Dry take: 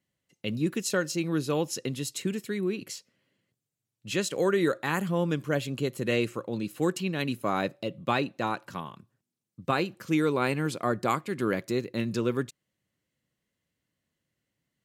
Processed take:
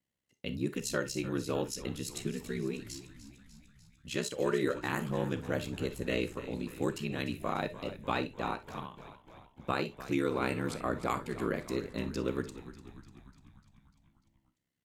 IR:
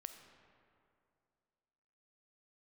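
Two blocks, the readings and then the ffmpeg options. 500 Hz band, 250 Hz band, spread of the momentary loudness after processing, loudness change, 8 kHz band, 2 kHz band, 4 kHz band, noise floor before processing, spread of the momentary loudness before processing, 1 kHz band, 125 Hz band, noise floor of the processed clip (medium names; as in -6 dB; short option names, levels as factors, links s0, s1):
-5.5 dB, -6.0 dB, 15 LU, -6.0 dB, -5.5 dB, -5.5 dB, -5.5 dB, under -85 dBFS, 9 LU, -5.5 dB, -5.5 dB, -78 dBFS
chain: -filter_complex "[0:a]aeval=exprs='val(0)*sin(2*PI*33*n/s)':c=same,asplit=8[s0][s1][s2][s3][s4][s5][s6][s7];[s1]adelay=297,afreqshift=-59,volume=0.188[s8];[s2]adelay=594,afreqshift=-118,volume=0.12[s9];[s3]adelay=891,afreqshift=-177,volume=0.0767[s10];[s4]adelay=1188,afreqshift=-236,volume=0.0495[s11];[s5]adelay=1485,afreqshift=-295,volume=0.0316[s12];[s6]adelay=1782,afreqshift=-354,volume=0.0202[s13];[s7]adelay=2079,afreqshift=-413,volume=0.0129[s14];[s0][s8][s9][s10][s11][s12][s13][s14]amix=inputs=8:normalize=0[s15];[1:a]atrim=start_sample=2205,atrim=end_sample=4410,asetrate=61740,aresample=44100[s16];[s15][s16]afir=irnorm=-1:irlink=0,volume=1.88"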